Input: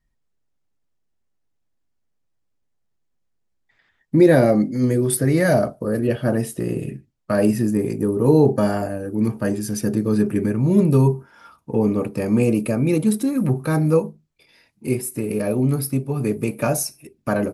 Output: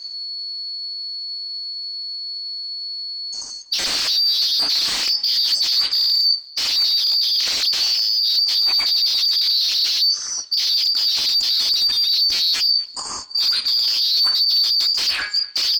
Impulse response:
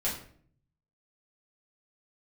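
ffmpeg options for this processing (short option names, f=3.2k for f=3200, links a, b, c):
-filter_complex "[0:a]afftfilt=real='real(if(lt(b,736),b+184*(1-2*mod(floor(b/184),2)),b),0)':imag='imag(if(lt(b,736),b+184*(1-2*mod(floor(b/184),2)),b),0)':win_size=2048:overlap=0.75,lowshelf=f=320:g=3,bandreject=f=186.8:t=h:w=4,bandreject=f=373.6:t=h:w=4,bandreject=f=560.4:t=h:w=4,bandreject=f=747.2:t=h:w=4,bandreject=f=934:t=h:w=4,bandreject=f=1.1208k:t=h:w=4,bandreject=f=1.3076k:t=h:w=4,bandreject=f=1.4944k:t=h:w=4,bandreject=f=1.6812k:t=h:w=4,bandreject=f=1.868k:t=h:w=4,bandreject=f=2.0548k:t=h:w=4,aresample=16000,aeval=exprs='0.75*sin(PI/2*8.91*val(0)/0.75)':c=same,aresample=44100,acontrast=60,alimiter=limit=-8dB:level=0:latency=1:release=62,areverse,acompressor=threshold=-24dB:ratio=12,areverse,equalizer=f=125:t=o:w=0.33:g=-11,equalizer=f=250:t=o:w=0.33:g=4,equalizer=f=4k:t=o:w=0.33:g=9,equalizer=f=6.3k:t=o:w=0.33:g=-5,asetrate=48951,aresample=44100,asplit=2[a][b];[b]adelay=244,lowpass=f=3.7k:p=1,volume=-22.5dB,asplit=2[c][d];[d]adelay=244,lowpass=f=3.7k:p=1,volume=0.35[e];[a][c][e]amix=inputs=3:normalize=0,volume=1dB"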